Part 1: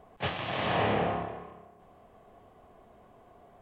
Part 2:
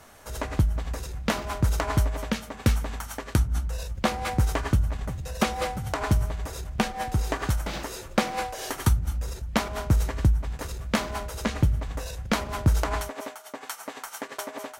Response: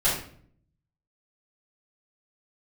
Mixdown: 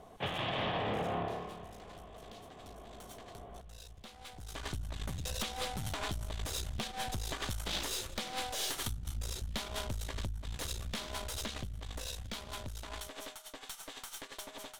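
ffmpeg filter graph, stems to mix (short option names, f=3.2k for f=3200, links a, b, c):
-filter_complex "[0:a]highshelf=f=2.7k:g=-10.5,alimiter=level_in=2.5dB:limit=-24dB:level=0:latency=1:release=143,volume=-2.5dB,asoftclip=type=tanh:threshold=-30dB,volume=2dB,asplit=2[a][b];[b]volume=-22dB[c];[1:a]equalizer=f=9.3k:w=0.5:g=8,acompressor=threshold=-29dB:ratio=12,aeval=exprs='(tanh(39.8*val(0)+0.75)-tanh(0.75))/39.8':c=same,volume=-7dB,afade=t=in:st=4.37:d=0.33:silence=0.251189[d];[c]aecho=0:1:857|1714|2571|3428|4285|5142:1|0.41|0.168|0.0689|0.0283|0.0116[e];[a][d][e]amix=inputs=3:normalize=0,equalizer=f=3.5k:w=2:g=10.5,dynaudnorm=f=330:g=21:m=6.5dB"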